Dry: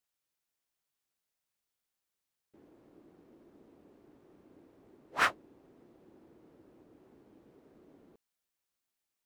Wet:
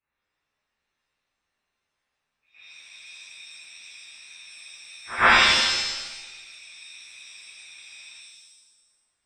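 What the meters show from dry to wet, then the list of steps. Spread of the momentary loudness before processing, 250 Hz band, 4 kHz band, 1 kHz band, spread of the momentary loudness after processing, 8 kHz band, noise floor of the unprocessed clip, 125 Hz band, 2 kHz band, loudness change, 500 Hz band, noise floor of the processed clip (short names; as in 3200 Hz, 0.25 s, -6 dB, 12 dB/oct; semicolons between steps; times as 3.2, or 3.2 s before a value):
7 LU, +11.5 dB, +23.0 dB, +13.0 dB, 20 LU, +19.5 dB, under -85 dBFS, +15.5 dB, +15.5 dB, +12.5 dB, +12.5 dB, -82 dBFS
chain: inverted band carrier 2800 Hz; pre-echo 0.114 s -17.5 dB; shimmer reverb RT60 1.1 s, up +7 st, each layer -2 dB, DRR -11.5 dB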